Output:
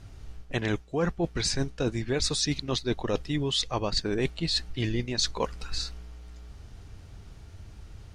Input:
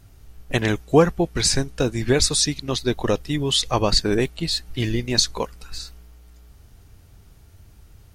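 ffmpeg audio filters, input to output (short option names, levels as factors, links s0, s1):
-af "lowpass=6400,areverse,acompressor=threshold=0.0447:ratio=12,areverse,volume=1.41"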